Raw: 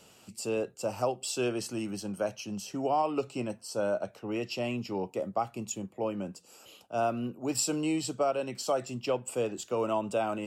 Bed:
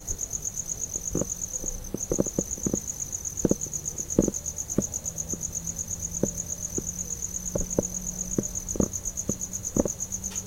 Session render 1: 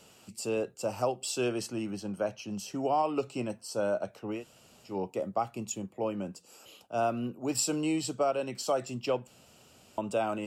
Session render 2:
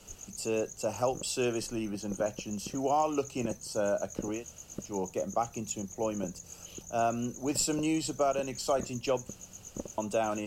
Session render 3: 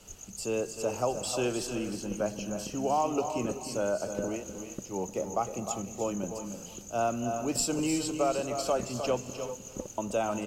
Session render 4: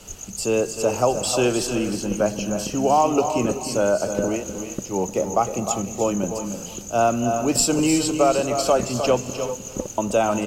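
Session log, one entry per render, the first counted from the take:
0:01.66–0:02.51: high-shelf EQ 5,600 Hz −9.5 dB; 0:04.38–0:04.90: fill with room tone, crossfade 0.16 s; 0:09.27–0:09.98: fill with room tone
mix in bed −15.5 dB
single-tap delay 306 ms −9 dB; reverb whose tail is shaped and stops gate 410 ms rising, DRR 10 dB
level +10 dB

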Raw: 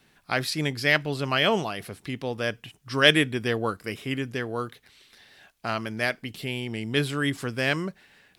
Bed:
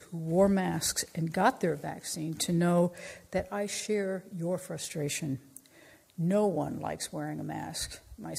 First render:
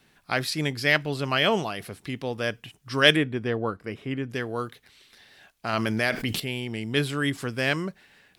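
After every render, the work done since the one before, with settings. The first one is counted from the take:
0:03.16–0:04.30: low-pass filter 1,400 Hz 6 dB per octave
0:05.73–0:06.40: envelope flattener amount 70%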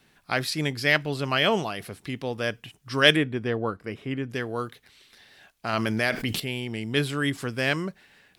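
no processing that can be heard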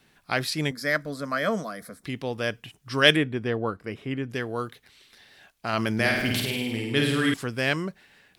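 0:00.71–0:02.04: phaser with its sweep stopped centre 560 Hz, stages 8
0:05.94–0:07.34: flutter between parallel walls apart 9 metres, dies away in 0.96 s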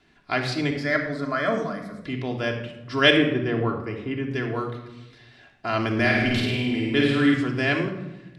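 high-frequency loss of the air 97 metres
rectangular room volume 3,800 cubic metres, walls furnished, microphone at 3.1 metres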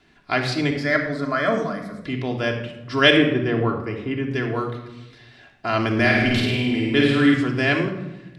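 level +3 dB
brickwall limiter −3 dBFS, peak gain reduction 1.5 dB

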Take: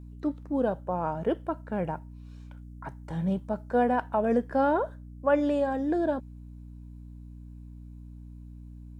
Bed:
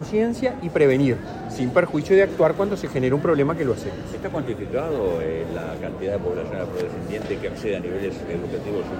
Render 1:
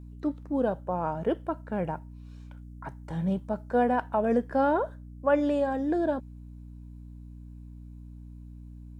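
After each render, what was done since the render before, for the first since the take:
no processing that can be heard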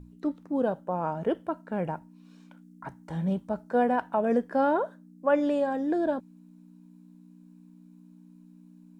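mains-hum notches 60/120 Hz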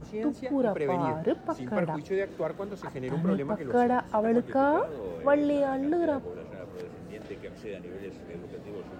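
mix in bed −14 dB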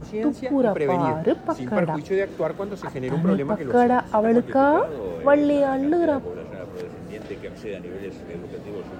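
level +6.5 dB

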